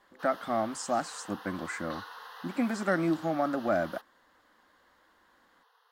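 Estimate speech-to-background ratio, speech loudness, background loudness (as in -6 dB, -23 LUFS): 14.5 dB, -31.5 LUFS, -46.0 LUFS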